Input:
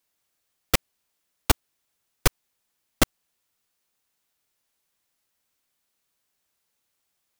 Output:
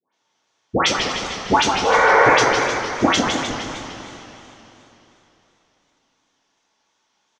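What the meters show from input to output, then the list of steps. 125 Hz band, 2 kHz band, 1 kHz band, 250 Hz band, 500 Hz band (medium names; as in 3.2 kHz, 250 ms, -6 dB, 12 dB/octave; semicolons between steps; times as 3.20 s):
+2.5 dB, +16.0 dB, +19.0 dB, +11.0 dB, +16.0 dB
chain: spectral replace 1.85–2.20 s, 440–2400 Hz after; treble shelf 3.9 kHz -9.5 dB; compression, threshold -17 dBFS, peak gain reduction 5.5 dB; cabinet simulation 180–6300 Hz, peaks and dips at 900 Hz +8 dB, 3.3 kHz +3 dB, 6.1 kHz +10 dB; phase dispersion highs, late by 131 ms, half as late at 1.4 kHz; frequency-shifting echo 237 ms, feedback 41%, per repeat -110 Hz, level -13.5 dB; two-slope reverb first 0.26 s, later 3.5 s, from -18 dB, DRR -9 dB; modulated delay 153 ms, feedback 59%, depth 193 cents, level -5.5 dB; trim +2.5 dB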